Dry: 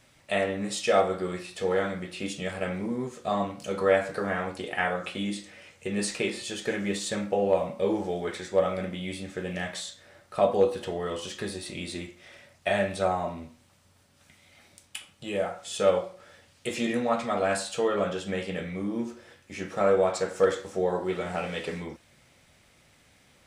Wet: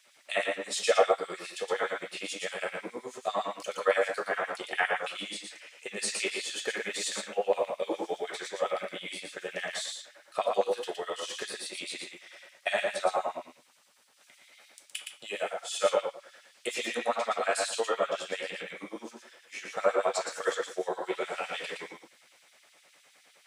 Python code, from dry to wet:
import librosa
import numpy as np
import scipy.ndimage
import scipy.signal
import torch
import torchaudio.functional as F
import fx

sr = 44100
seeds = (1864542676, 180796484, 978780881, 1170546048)

y = fx.filter_lfo_highpass(x, sr, shape='sine', hz=9.7, low_hz=410.0, high_hz=3500.0, q=0.93)
y = y + 10.0 ** (-4.5 / 20.0) * np.pad(y, (int(117 * sr / 1000.0), 0))[:len(y)]